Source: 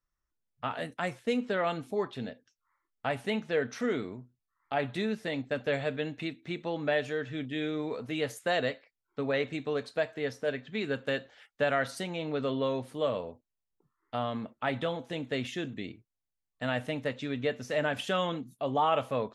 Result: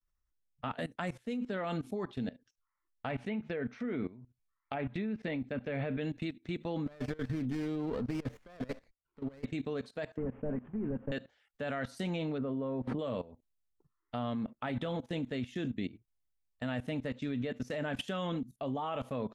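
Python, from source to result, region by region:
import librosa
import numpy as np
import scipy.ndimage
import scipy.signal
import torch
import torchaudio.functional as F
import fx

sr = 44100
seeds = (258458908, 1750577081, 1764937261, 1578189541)

y = fx.chain(x, sr, fx.env_lowpass_down(base_hz=2300.0, full_db=-28.5),
    fx.peak_eq(hz=2300.0, db=6.0, octaves=0.28), at=(3.1, 6.01))
y = fx.chain(y, sr, fx.lowpass(hz=3900.0, slope=12),
    fx.over_compress(threshold_db=-35.0, ratio=-0.5),
    fx.running_max(window=9), at=(6.86, 9.45))
y = fx.chain(y, sr, fx.delta_mod(bps=16000, step_db=-46.0),
    fx.lowpass(hz=1100.0, slope=12),
    fx.peak_eq(hz=220.0, db=4.5, octaves=0.25), at=(10.17, 11.12))
y = fx.chain(y, sr, fx.lowpass(hz=1400.0, slope=12),
    fx.pre_swell(db_per_s=28.0), at=(12.38, 12.99))
y = fx.dynamic_eq(y, sr, hz=230.0, q=1.7, threshold_db=-48.0, ratio=4.0, max_db=7)
y = fx.level_steps(y, sr, step_db=18)
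y = fx.low_shelf(y, sr, hz=95.0, db=11.5)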